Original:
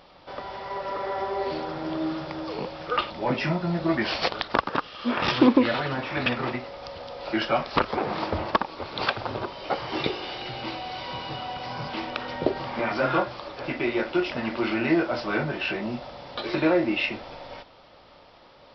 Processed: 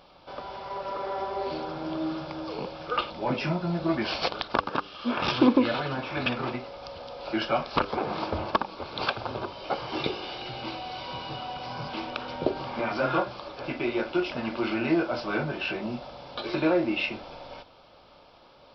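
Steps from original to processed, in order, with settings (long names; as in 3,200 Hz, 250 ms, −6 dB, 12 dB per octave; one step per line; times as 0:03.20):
notch filter 1,900 Hz, Q 5.2
hum removal 98.53 Hz, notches 5
level −2 dB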